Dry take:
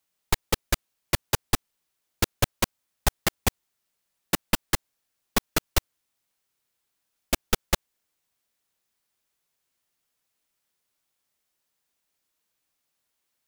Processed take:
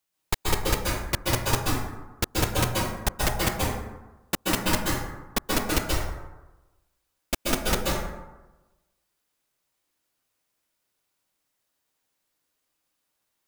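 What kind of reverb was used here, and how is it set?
plate-style reverb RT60 1.1 s, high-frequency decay 0.45×, pre-delay 0.12 s, DRR -4 dB; gain -3 dB

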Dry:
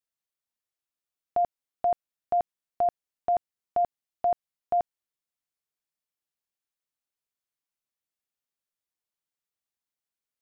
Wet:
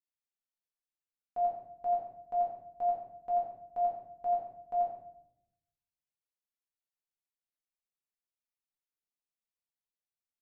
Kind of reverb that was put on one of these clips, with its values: shoebox room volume 190 m³, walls mixed, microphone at 1.9 m; gain -16.5 dB

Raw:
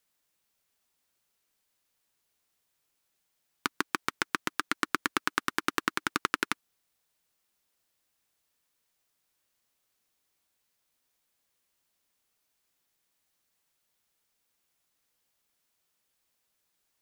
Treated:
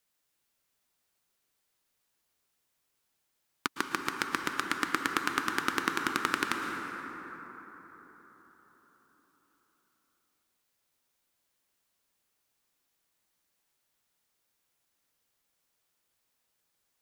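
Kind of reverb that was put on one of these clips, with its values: plate-style reverb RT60 4.8 s, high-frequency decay 0.35×, pre-delay 0.1 s, DRR 3 dB; gain -1.5 dB

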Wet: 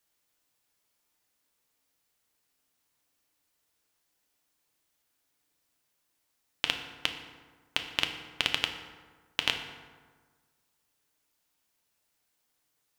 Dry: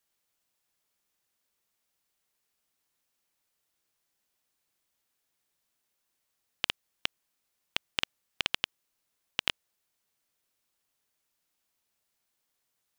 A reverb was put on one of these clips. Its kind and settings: FDN reverb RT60 1.5 s, low-frequency decay 1.1×, high-frequency decay 0.55×, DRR 4.5 dB; gain +2 dB

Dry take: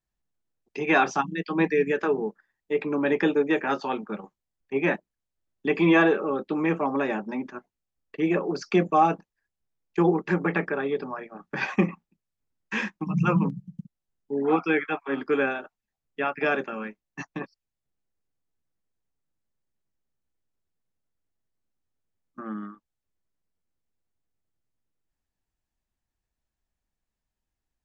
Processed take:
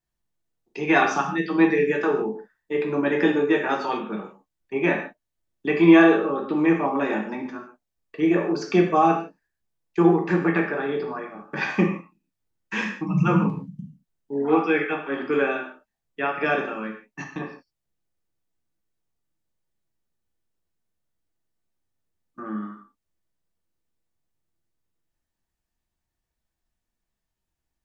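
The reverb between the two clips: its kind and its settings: non-linear reverb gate 0.19 s falling, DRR 1 dB

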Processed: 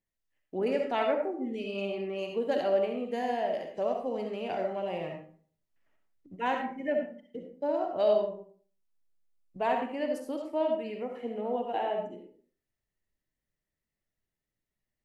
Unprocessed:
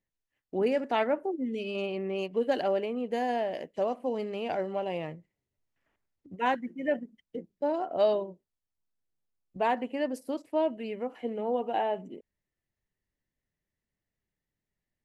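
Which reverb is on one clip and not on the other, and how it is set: digital reverb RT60 0.47 s, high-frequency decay 0.6×, pre-delay 25 ms, DRR 2.5 dB; gain -3 dB

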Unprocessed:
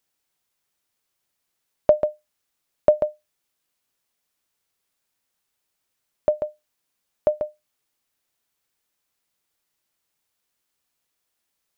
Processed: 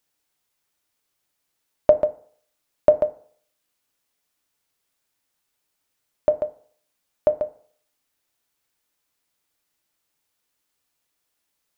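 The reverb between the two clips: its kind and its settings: FDN reverb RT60 0.55 s, low-frequency decay 0.85×, high-frequency decay 0.5×, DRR 10.5 dB; gain +1 dB

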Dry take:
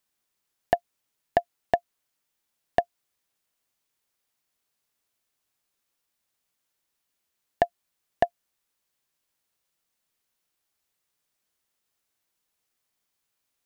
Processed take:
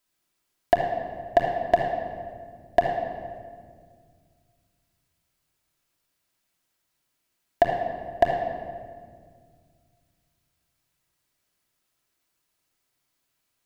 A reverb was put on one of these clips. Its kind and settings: shoebox room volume 3100 m³, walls mixed, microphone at 2.9 m

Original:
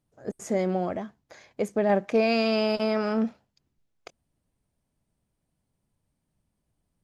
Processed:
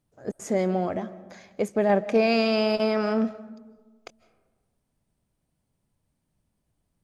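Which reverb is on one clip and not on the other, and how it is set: digital reverb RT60 1.4 s, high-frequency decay 0.35×, pre-delay 0.115 s, DRR 17 dB; gain +1.5 dB

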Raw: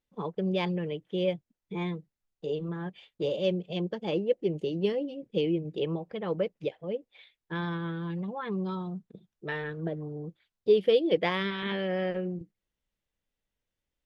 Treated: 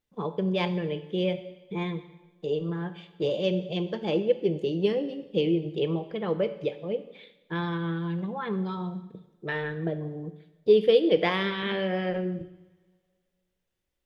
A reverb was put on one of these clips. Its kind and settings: two-slope reverb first 0.95 s, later 2.6 s, from -25 dB, DRR 9 dB; gain +2.5 dB

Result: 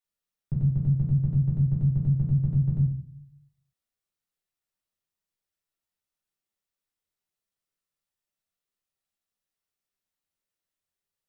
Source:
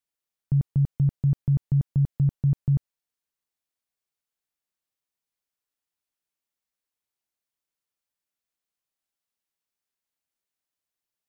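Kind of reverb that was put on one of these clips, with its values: shoebox room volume 58 m³, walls mixed, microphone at 1.1 m; gain -6.5 dB

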